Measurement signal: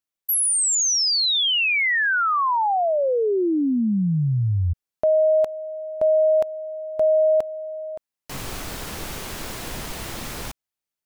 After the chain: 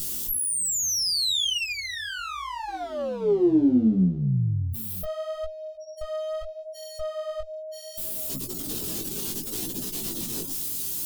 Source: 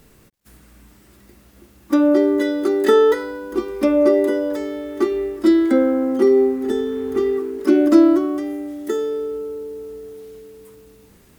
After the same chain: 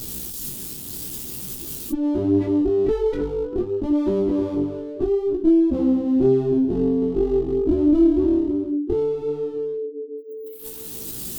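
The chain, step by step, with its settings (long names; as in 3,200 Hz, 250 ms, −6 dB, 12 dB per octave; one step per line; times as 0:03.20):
spike at every zero crossing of −19 dBFS
on a send: delay that swaps between a low-pass and a high-pass 317 ms, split 1,200 Hz, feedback 51%, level −12.5 dB
on the sum: gate on every frequency bin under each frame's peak −15 dB strong
in parallel at −1 dB: compressor whose output falls as the input rises −21 dBFS, ratio −1
on the sum: high-pass filter 220 Hz 12 dB per octave
asymmetric clip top −20.5 dBFS
high-shelf EQ 2,600 Hz −10 dB
chorus effect 0.72 Hz, delay 15.5 ms, depth 7.2 ms
flat-topped bell 1,100 Hz −15 dB 2.5 octaves
level +3 dB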